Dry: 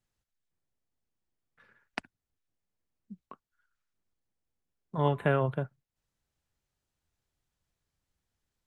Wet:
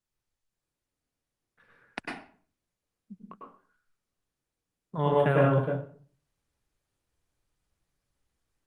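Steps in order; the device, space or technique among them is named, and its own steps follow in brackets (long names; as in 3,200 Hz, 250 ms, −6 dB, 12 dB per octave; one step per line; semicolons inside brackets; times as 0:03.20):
speakerphone in a meeting room (convolution reverb RT60 0.50 s, pre-delay 95 ms, DRR −3.5 dB; automatic gain control gain up to 7 dB; level −7 dB; Opus 32 kbit/s 48,000 Hz)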